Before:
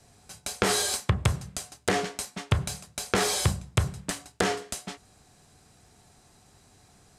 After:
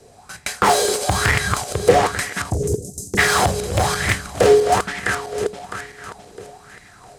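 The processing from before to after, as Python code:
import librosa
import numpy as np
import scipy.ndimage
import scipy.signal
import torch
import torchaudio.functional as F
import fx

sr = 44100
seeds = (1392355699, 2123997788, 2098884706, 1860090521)

y = fx.reverse_delay_fb(x, sr, ms=329, feedback_pct=60, wet_db=-4)
y = fx.cheby1_bandstop(y, sr, low_hz=390.0, high_hz=6400.0, order=3, at=(2.49, 3.17), fade=0.02)
y = y + 10.0 ** (-16.5 / 20.0) * np.pad(y, (int(262 * sr / 1000.0), 0))[:len(y)]
y = np.clip(10.0 ** (21.0 / 20.0) * y, -1.0, 1.0) / 10.0 ** (21.0 / 20.0)
y = fx.bell_lfo(y, sr, hz=1.1, low_hz=420.0, high_hz=2000.0, db=17)
y = y * librosa.db_to_amplitude(5.0)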